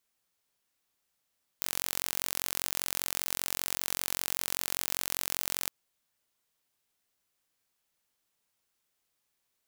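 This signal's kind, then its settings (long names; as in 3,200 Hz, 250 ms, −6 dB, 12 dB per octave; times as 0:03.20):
impulse train 45.1 per second, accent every 0, −4.5 dBFS 4.08 s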